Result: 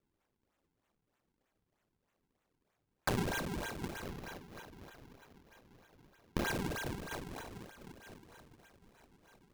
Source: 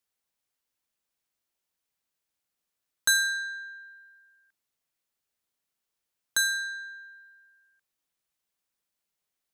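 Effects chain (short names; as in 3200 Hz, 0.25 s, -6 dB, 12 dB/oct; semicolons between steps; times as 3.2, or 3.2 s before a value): one diode to ground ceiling -25 dBFS; thin delay 0.249 s, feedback 64%, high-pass 1500 Hz, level -12 dB; compressor 2.5:1, threshold -39 dBFS, peak gain reduction 12.5 dB; diffused feedback echo 1.078 s, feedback 43%, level -12 dB; dynamic EQ 4300 Hz, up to +4 dB, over -56 dBFS, Q 1.2; decimation with a swept rate 42×, swing 160% 3.2 Hz; 4.05–6.48 bell 8400 Hz -6.5 dB 0.45 oct; gain +2 dB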